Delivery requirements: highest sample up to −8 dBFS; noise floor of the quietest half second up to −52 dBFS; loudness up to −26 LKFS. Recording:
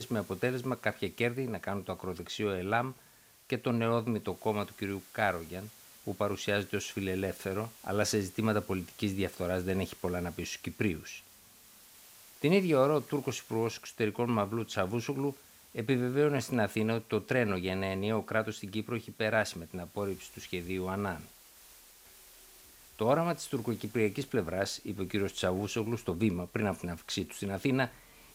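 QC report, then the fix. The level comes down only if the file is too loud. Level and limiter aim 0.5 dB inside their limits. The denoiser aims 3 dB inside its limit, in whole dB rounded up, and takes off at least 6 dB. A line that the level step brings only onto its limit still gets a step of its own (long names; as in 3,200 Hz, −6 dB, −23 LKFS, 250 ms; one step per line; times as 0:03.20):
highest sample −13.0 dBFS: in spec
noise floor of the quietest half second −60 dBFS: in spec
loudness −33.0 LKFS: in spec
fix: no processing needed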